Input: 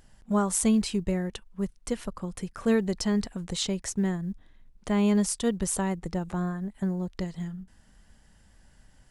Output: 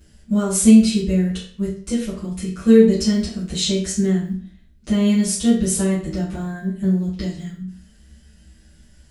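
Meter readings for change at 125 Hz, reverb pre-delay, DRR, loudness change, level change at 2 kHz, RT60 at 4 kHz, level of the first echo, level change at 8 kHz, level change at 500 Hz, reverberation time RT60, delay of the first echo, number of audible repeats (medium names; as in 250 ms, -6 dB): +8.5 dB, 5 ms, -12.0 dB, +10.0 dB, +4.5 dB, 0.40 s, no echo, +7.5 dB, +9.5 dB, 0.45 s, no echo, no echo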